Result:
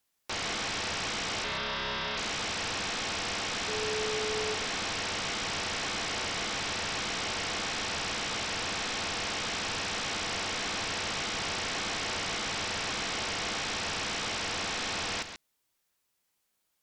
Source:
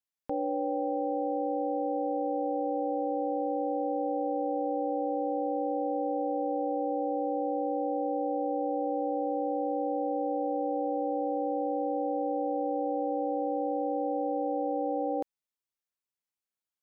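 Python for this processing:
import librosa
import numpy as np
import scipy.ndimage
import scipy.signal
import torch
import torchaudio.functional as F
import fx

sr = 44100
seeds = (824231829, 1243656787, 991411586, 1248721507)

y = fx.fixed_phaser(x, sr, hz=710.0, stages=8, at=(1.44, 2.17))
y = fx.fold_sine(y, sr, drive_db=19, ceiling_db=-22.5)
y = fx.dmg_tone(y, sr, hz=430.0, level_db=-26.0, at=(3.67, 4.53), fade=0.02)
y = y + 10.0 ** (-9.5 / 20.0) * np.pad(y, (int(135 * sr / 1000.0), 0))[:len(y)]
y = y * librosa.db_to_amplitude(-8.5)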